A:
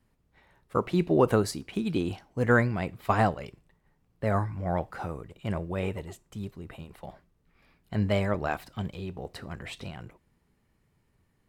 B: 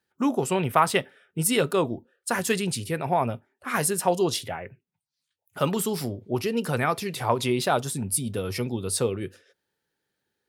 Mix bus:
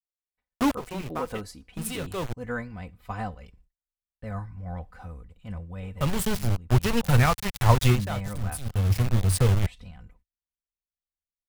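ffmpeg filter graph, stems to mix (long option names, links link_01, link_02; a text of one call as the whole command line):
ffmpeg -i stem1.wav -i stem2.wav -filter_complex "[0:a]agate=range=-39dB:threshold=-57dB:ratio=16:detection=peak,aecho=1:1:4:0.73,volume=-11.5dB,asplit=2[link_01][link_02];[1:a]equalizer=frequency=89:width_type=o:width=0.49:gain=9.5,aeval=exprs='val(0)*gte(abs(val(0)),0.0531)':channel_layout=same,adelay=400,volume=2dB,asplit=3[link_03][link_04][link_05];[link_03]atrim=end=2.33,asetpts=PTS-STARTPTS,afade=type=out:start_time=2.326:duration=0.004:curve=hsin[link_06];[link_04]atrim=start=2.33:end=5.16,asetpts=PTS-STARTPTS,volume=0[link_07];[link_05]atrim=start=5.16,asetpts=PTS-STARTPTS,afade=type=in:duration=0.004:curve=hsin[link_08];[link_06][link_07][link_08]concat=n=3:v=0:a=1[link_09];[link_02]apad=whole_len=480208[link_10];[link_09][link_10]sidechaincompress=threshold=-45dB:ratio=16:attack=21:release=659[link_11];[link_01][link_11]amix=inputs=2:normalize=0,asubboost=boost=8.5:cutoff=110" out.wav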